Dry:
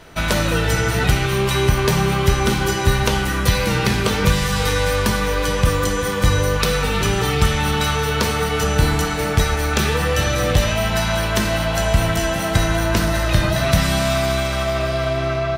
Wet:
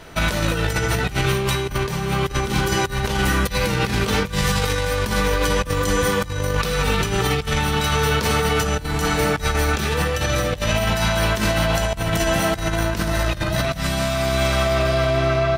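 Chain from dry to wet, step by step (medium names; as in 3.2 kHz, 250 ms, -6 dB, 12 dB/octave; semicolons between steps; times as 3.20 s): compressor with a negative ratio -20 dBFS, ratio -0.5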